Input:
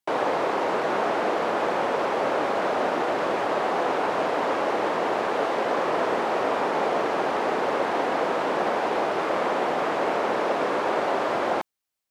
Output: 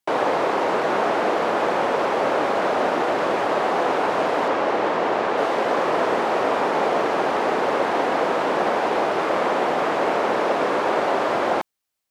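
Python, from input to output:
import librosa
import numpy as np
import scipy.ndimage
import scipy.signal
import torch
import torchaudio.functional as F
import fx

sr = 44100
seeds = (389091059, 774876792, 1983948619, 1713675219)

y = fx.high_shelf(x, sr, hz=9000.0, db=-11.0, at=(4.48, 5.38))
y = y * librosa.db_to_amplitude(3.5)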